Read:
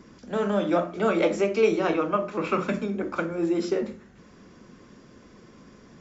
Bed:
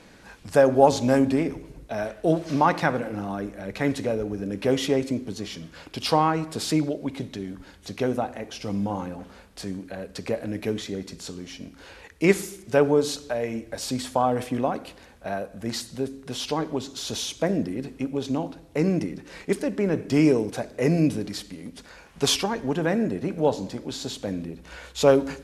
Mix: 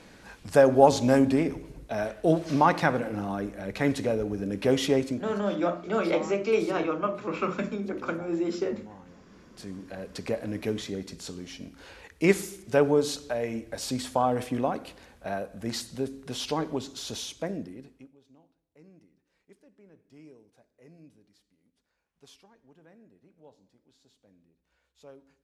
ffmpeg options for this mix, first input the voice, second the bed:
-filter_complex "[0:a]adelay=4900,volume=-3.5dB[a];[1:a]volume=16dB,afade=t=out:st=4.99:d=0.4:silence=0.11885,afade=t=in:st=9.26:d=0.85:silence=0.141254,afade=t=out:st=16.7:d=1.46:silence=0.0316228[b];[a][b]amix=inputs=2:normalize=0"

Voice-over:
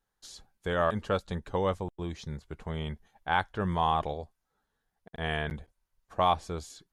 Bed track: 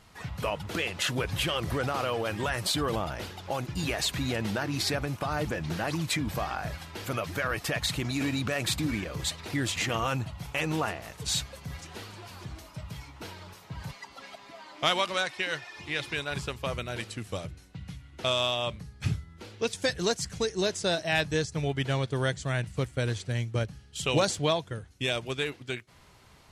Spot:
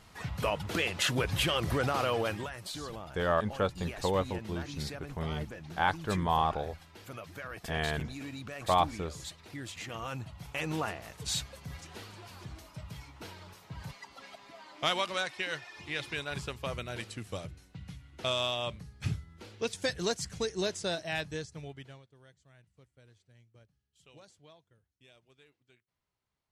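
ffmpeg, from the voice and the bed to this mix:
-filter_complex "[0:a]adelay=2500,volume=-1dB[a];[1:a]volume=8.5dB,afade=t=out:st=2.24:d=0.26:silence=0.237137,afade=t=in:st=9.84:d=0.95:silence=0.375837,afade=t=out:st=20.61:d=1.44:silence=0.0446684[b];[a][b]amix=inputs=2:normalize=0"

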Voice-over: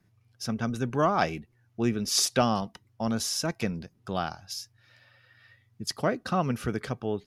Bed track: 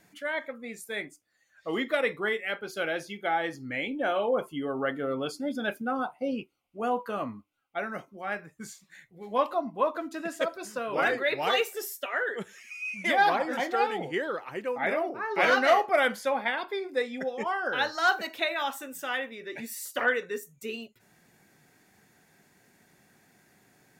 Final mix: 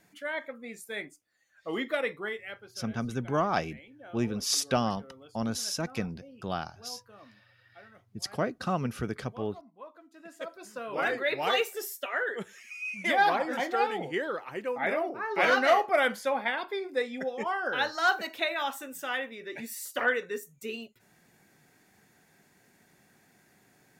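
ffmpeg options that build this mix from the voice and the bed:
-filter_complex "[0:a]adelay=2350,volume=-3dB[a];[1:a]volume=17dB,afade=t=out:st=1.91:d=0.92:silence=0.125893,afade=t=in:st=10.1:d=1.27:silence=0.105925[b];[a][b]amix=inputs=2:normalize=0"

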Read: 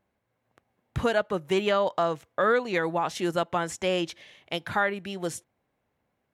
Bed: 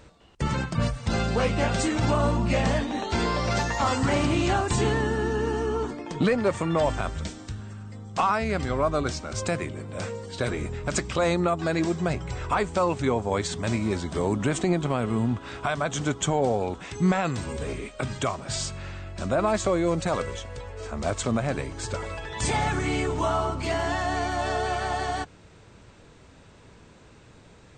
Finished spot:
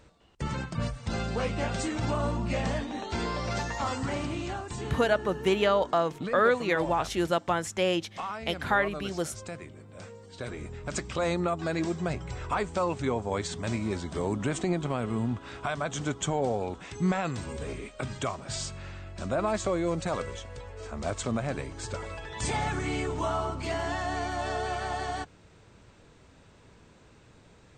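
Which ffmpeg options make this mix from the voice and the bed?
-filter_complex "[0:a]adelay=3950,volume=0dB[a];[1:a]volume=2dB,afade=t=out:st=3.73:d=0.92:silence=0.473151,afade=t=in:st=10.18:d=1.14:silence=0.398107[b];[a][b]amix=inputs=2:normalize=0"

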